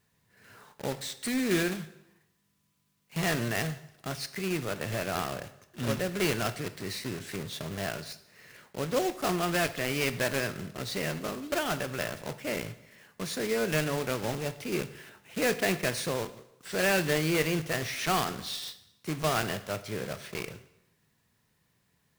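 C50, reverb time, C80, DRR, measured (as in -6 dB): 14.5 dB, 0.85 s, 17.0 dB, 11.5 dB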